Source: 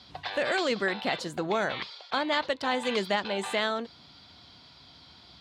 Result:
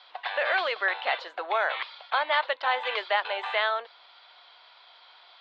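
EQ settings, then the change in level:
Bessel high-pass filter 920 Hz, order 6
low-pass filter 3,700 Hz 24 dB per octave
high-shelf EQ 2,200 Hz −8.5 dB
+8.5 dB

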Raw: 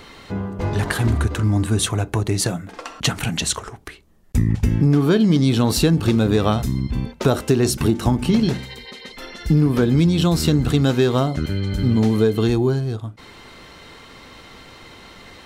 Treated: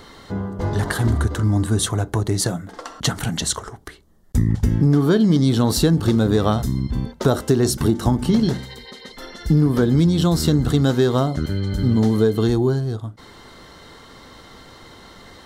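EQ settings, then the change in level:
parametric band 2,500 Hz −13 dB 0.33 octaves
0.0 dB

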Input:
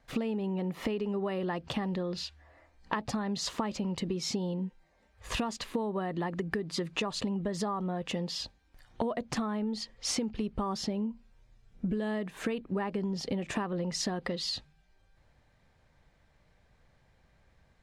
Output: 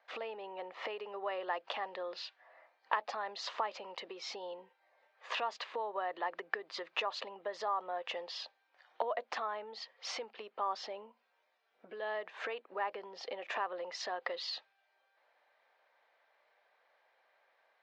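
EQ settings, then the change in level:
high-pass filter 560 Hz 24 dB per octave
low-pass filter 7,700 Hz
high-frequency loss of the air 210 metres
+2.0 dB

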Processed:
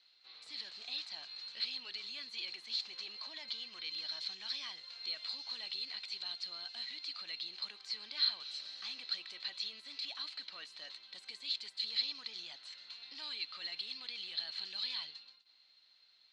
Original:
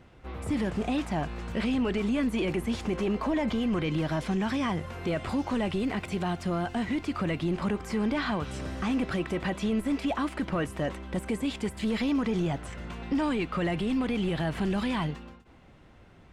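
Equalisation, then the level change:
resonant band-pass 4,200 Hz, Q 20
high-frequency loss of the air 77 metres
spectral tilt +2.5 dB per octave
+15.5 dB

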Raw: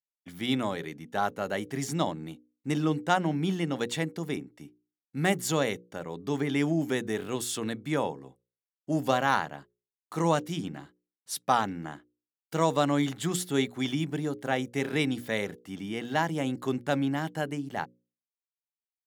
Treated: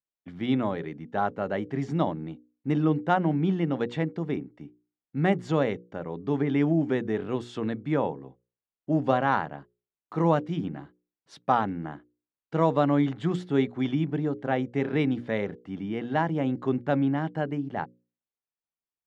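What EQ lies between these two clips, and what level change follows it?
head-to-tape spacing loss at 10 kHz 36 dB
+4.5 dB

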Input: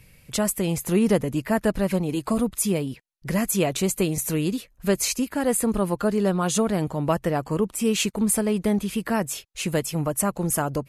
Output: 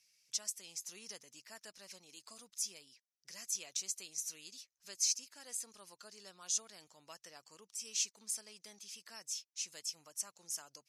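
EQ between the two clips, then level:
resonant band-pass 5,700 Hz, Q 5
0.0 dB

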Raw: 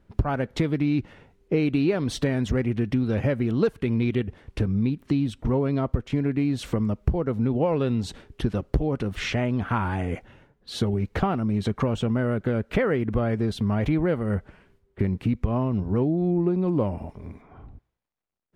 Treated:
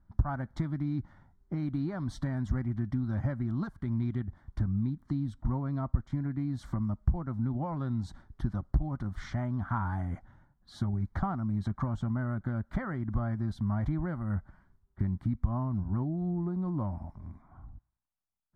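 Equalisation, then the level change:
low-pass filter 2,600 Hz 6 dB per octave
low-shelf EQ 81 Hz +5 dB
phaser with its sweep stopped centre 1,100 Hz, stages 4
−5.5 dB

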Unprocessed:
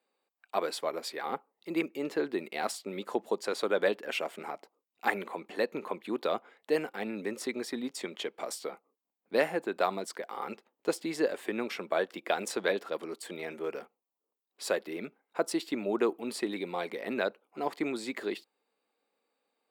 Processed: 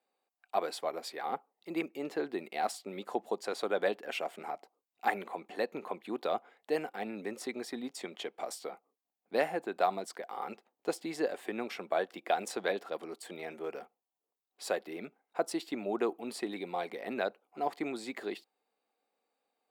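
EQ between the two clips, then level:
parametric band 740 Hz +8.5 dB 0.27 octaves
−4.0 dB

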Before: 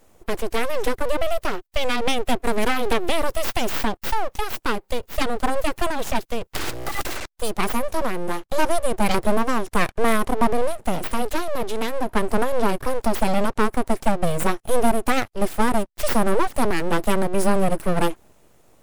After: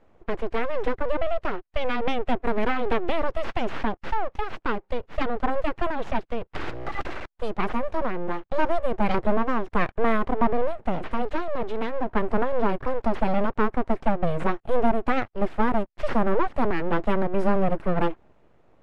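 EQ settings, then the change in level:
low-pass filter 2,200 Hz 12 dB per octave
−2.5 dB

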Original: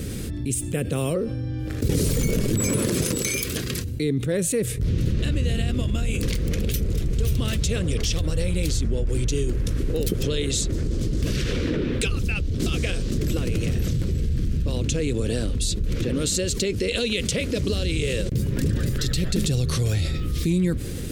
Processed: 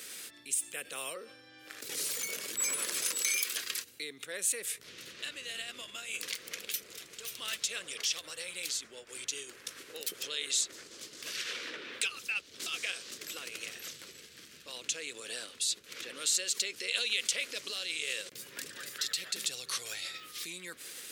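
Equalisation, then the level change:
high-pass filter 1,200 Hz 12 dB per octave
−3.5 dB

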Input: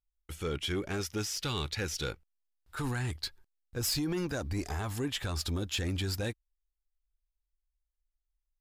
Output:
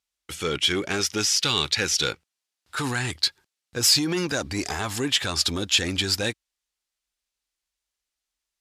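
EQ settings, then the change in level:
Bessel high-pass filter 160 Hz, order 2
high-frequency loss of the air 51 metres
high-shelf EQ 2,200 Hz +11.5 dB
+7.5 dB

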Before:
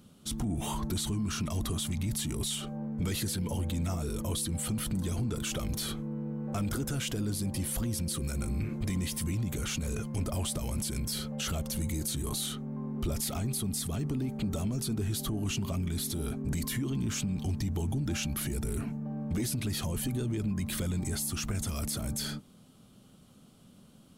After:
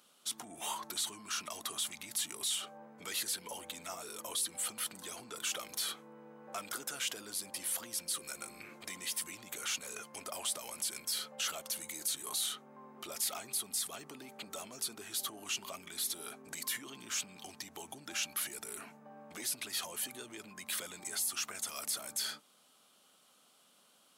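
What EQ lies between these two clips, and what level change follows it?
high-pass filter 780 Hz 12 dB per octave
0.0 dB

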